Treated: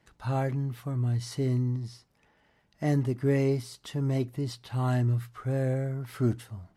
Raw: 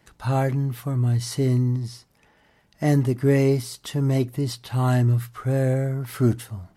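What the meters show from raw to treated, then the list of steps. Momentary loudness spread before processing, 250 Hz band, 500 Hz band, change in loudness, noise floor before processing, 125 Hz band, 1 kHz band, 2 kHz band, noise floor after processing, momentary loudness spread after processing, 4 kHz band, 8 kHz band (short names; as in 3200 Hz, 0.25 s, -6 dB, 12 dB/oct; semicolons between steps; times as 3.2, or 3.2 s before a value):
7 LU, -6.5 dB, -6.5 dB, -6.5 dB, -62 dBFS, -6.5 dB, -6.5 dB, -7.0 dB, -69 dBFS, 7 LU, -8.0 dB, -10.0 dB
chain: high shelf 9600 Hz -9.5 dB; gain -6.5 dB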